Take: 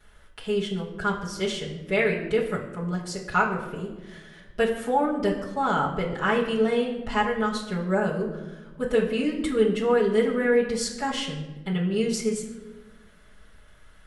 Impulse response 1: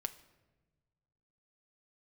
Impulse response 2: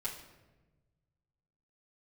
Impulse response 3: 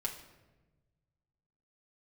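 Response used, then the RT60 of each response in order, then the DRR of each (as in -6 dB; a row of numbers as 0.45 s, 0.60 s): 2; 1.2 s, 1.2 s, 1.2 s; 7.5 dB, -8.0 dB, -2.0 dB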